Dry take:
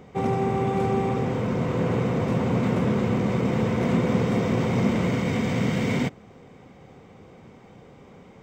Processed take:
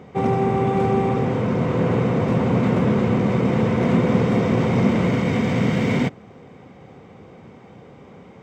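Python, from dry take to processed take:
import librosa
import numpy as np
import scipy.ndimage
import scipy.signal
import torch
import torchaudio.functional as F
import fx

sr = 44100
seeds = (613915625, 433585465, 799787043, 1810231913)

y = scipy.signal.sosfilt(scipy.signal.butter(2, 66.0, 'highpass', fs=sr, output='sos'), x)
y = fx.high_shelf(y, sr, hz=5400.0, db=-8.5)
y = y * 10.0 ** (4.5 / 20.0)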